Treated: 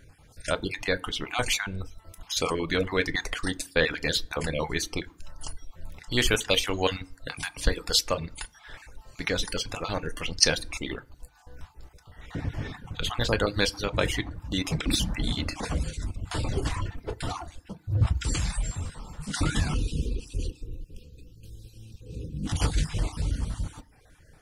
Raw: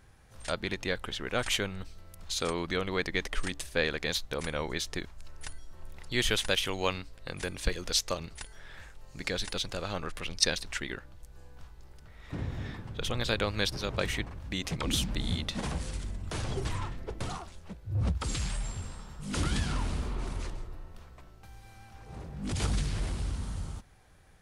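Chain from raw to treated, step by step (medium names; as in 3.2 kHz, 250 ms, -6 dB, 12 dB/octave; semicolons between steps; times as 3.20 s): random holes in the spectrogram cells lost 28%; de-hum 300.7 Hz, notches 16; time-frequency box 19.74–22.46 s, 550–2400 Hz -28 dB; FDN reverb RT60 0.54 s, low-frequency decay 1.4×, high-frequency decay 0.55×, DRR 7 dB; reverb removal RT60 0.55 s; trim +5.5 dB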